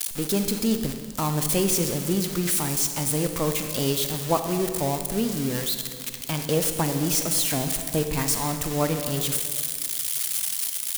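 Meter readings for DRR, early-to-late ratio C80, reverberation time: 6.5 dB, 8.5 dB, 1.9 s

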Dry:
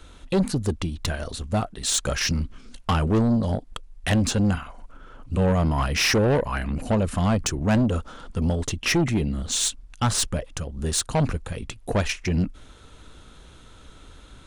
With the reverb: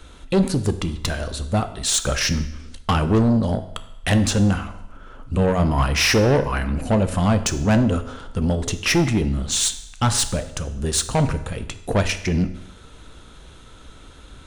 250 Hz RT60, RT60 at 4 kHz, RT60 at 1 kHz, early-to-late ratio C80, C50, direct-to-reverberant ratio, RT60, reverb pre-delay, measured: 0.85 s, 0.80 s, 0.85 s, 15.0 dB, 12.5 dB, 9.5 dB, 0.85 s, 12 ms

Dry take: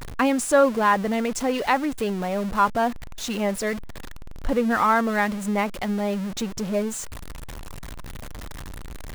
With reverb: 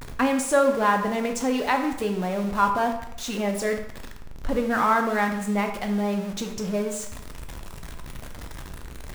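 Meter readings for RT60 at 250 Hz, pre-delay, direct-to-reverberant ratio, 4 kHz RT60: 0.85 s, 9 ms, 4.0 dB, 0.60 s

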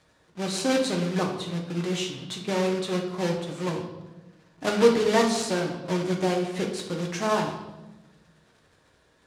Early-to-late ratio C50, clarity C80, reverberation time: 6.5 dB, 9.0 dB, 1.1 s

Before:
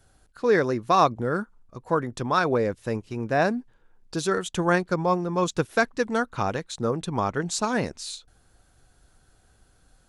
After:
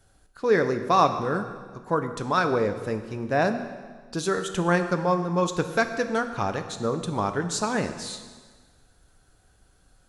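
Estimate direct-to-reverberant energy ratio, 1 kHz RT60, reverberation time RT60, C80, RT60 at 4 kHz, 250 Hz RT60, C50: 7.5 dB, 1.5 s, 1.5 s, 11.0 dB, 1.4 s, 1.6 s, 9.5 dB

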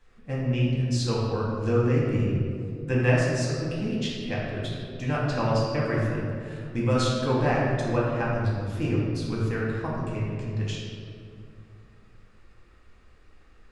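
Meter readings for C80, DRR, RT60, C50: 1.0 dB, -6.5 dB, 2.4 s, -1.0 dB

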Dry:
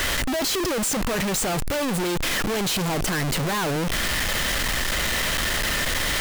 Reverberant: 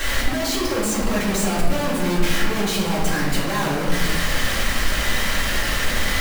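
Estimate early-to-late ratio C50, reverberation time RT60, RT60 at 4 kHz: 1.5 dB, 1.6 s, 0.85 s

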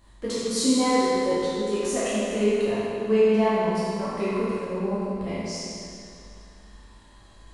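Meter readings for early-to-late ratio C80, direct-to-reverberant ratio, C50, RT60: -2.5 dB, -11.0 dB, -4.5 dB, 2.6 s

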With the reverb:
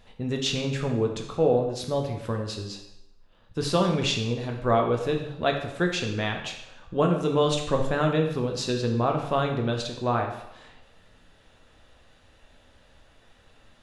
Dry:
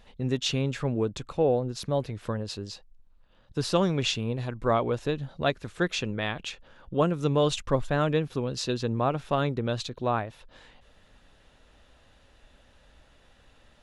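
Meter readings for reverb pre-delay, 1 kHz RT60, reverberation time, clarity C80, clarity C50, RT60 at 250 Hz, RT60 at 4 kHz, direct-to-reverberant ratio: 8 ms, 0.85 s, 0.85 s, 8.5 dB, 6.0 dB, 0.80 s, 0.75 s, 2.0 dB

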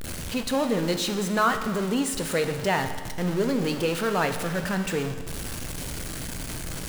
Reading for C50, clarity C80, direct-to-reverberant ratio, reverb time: 9.0 dB, 10.5 dB, 6.5 dB, 1.5 s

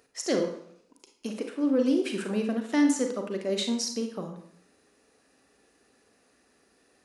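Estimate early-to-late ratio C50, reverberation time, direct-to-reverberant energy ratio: 6.5 dB, 0.65 s, 4.0 dB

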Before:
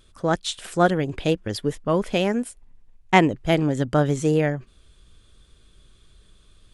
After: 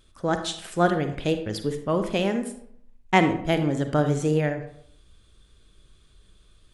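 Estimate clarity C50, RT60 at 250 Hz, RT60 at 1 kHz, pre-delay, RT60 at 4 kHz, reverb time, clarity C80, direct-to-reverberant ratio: 9.0 dB, 0.70 s, 0.65 s, 38 ms, 0.40 s, 0.70 s, 12.0 dB, 7.5 dB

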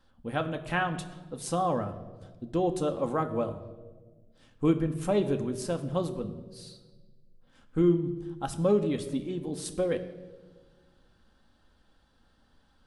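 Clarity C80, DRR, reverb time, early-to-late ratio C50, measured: 14.0 dB, 5.5 dB, 1.4 s, 12.5 dB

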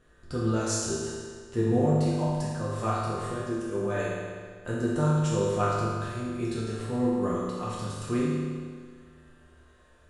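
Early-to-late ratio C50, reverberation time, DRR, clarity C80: -1.5 dB, 1.8 s, -7.5 dB, 0.5 dB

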